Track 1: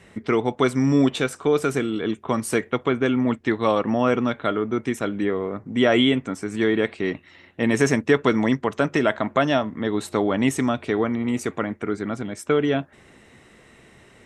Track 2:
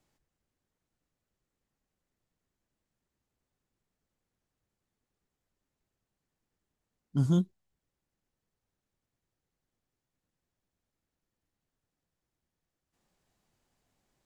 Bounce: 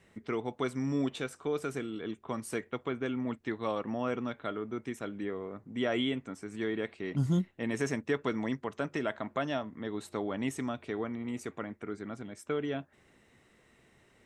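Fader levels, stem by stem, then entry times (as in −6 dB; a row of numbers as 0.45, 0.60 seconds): −13.0, −2.5 decibels; 0.00, 0.00 seconds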